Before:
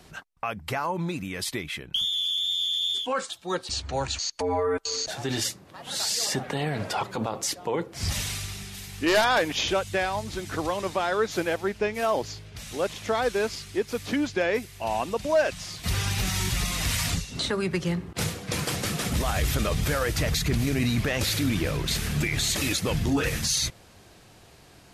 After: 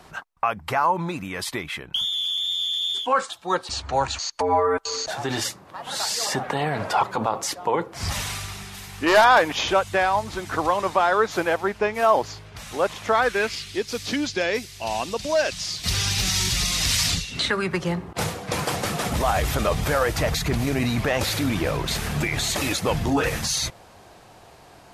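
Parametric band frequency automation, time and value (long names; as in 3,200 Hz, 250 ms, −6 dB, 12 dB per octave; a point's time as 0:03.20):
parametric band +10 dB 1.6 octaves
0:13.07 1,000 Hz
0:13.86 4,900 Hz
0:17.07 4,900 Hz
0:17.86 820 Hz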